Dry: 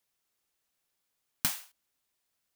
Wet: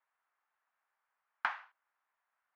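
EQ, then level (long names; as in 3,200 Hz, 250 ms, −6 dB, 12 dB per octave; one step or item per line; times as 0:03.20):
flat-topped band-pass 1,200 Hz, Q 1.2
high-frequency loss of the air 150 metres
+9.0 dB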